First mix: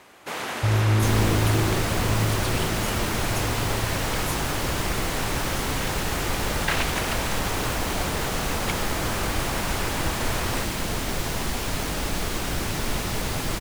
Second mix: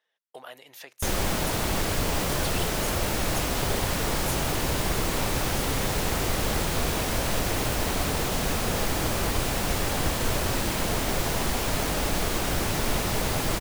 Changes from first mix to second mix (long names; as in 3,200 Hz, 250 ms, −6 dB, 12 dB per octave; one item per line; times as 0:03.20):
first sound: muted
second sound: add high-shelf EQ 12,000 Hz +4.5 dB
master: add parametric band 600 Hz +3.5 dB 1.2 octaves